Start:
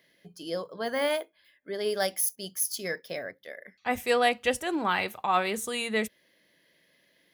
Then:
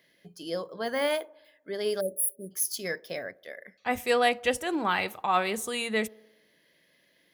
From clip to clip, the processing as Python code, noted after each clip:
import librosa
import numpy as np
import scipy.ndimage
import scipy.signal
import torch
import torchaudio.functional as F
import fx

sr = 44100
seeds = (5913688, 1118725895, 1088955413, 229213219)

y = fx.echo_wet_bandpass(x, sr, ms=60, feedback_pct=65, hz=540.0, wet_db=-22.5)
y = fx.spec_erase(y, sr, start_s=2.0, length_s=0.51, low_hz=620.0, high_hz=8100.0)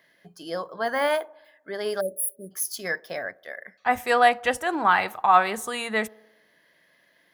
y = fx.band_shelf(x, sr, hz=1100.0, db=8.5, octaves=1.7)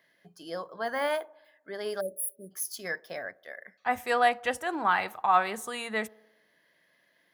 y = scipy.signal.sosfilt(scipy.signal.butter(2, 66.0, 'highpass', fs=sr, output='sos'), x)
y = F.gain(torch.from_numpy(y), -5.5).numpy()